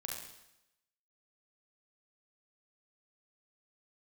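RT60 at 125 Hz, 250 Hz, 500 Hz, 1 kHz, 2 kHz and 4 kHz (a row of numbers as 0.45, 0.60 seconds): 0.85, 0.85, 0.85, 0.90, 0.85, 0.90 seconds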